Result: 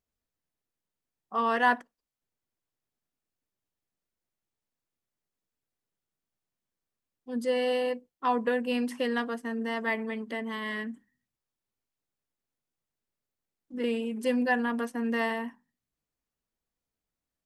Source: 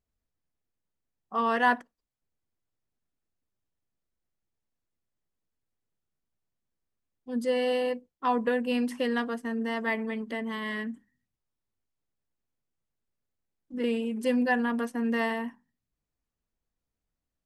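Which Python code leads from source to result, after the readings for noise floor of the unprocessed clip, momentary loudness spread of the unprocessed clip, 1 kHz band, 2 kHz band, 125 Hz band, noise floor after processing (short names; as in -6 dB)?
under -85 dBFS, 9 LU, 0.0 dB, 0.0 dB, n/a, under -85 dBFS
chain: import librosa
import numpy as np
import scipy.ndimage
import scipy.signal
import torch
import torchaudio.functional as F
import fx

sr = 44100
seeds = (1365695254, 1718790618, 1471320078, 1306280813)

y = fx.low_shelf(x, sr, hz=130.0, db=-8.0)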